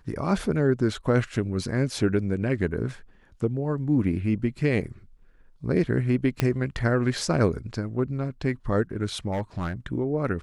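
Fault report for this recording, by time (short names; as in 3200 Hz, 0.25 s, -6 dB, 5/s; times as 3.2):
6.4 pop -9 dBFS
9.31–9.73 clipped -24 dBFS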